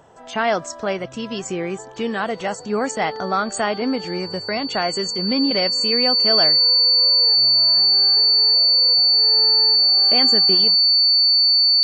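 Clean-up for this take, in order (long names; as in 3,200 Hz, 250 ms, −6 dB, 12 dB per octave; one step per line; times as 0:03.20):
notch filter 4,500 Hz, Q 30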